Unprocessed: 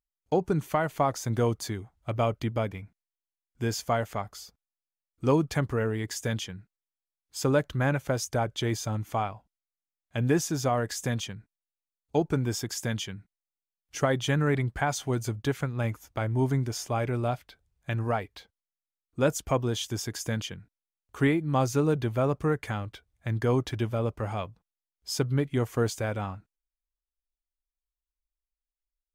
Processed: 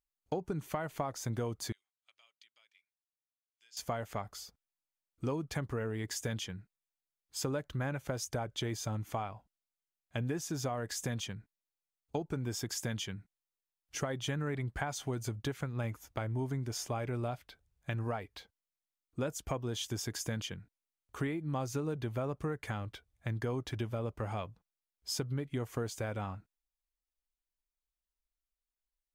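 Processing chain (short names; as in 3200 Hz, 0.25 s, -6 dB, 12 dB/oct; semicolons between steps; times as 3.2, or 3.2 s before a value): compressor, threshold -30 dBFS, peak gain reduction 11.5 dB; 1.72–3.77 ladder band-pass 4600 Hz, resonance 20%; gain -2.5 dB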